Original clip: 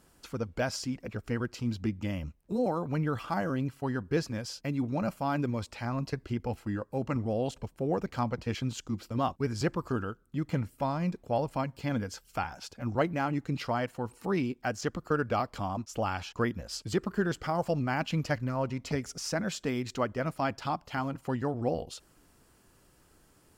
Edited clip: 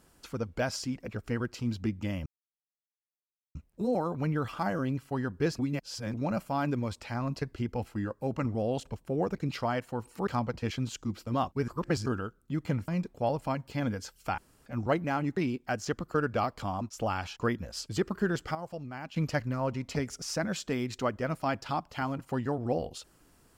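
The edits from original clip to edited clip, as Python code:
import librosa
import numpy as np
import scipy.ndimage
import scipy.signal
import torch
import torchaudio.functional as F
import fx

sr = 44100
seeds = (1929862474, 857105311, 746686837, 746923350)

y = fx.edit(x, sr, fx.insert_silence(at_s=2.26, length_s=1.29),
    fx.reverse_span(start_s=4.3, length_s=0.55),
    fx.reverse_span(start_s=9.52, length_s=0.38),
    fx.cut(start_s=10.72, length_s=0.25),
    fx.room_tone_fill(start_s=12.47, length_s=0.28),
    fx.move(start_s=13.46, length_s=0.87, to_s=8.11),
    fx.clip_gain(start_s=17.51, length_s=0.61, db=-10.5), tone=tone)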